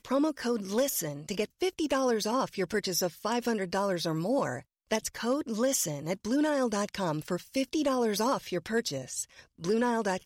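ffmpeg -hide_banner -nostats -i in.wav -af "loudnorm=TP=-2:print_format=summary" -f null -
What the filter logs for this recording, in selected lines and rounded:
Input Integrated:    -30.4 LUFS
Input True Peak:     -15.7 dBTP
Input LRA:             0.7 LU
Input Threshold:     -40.5 LUFS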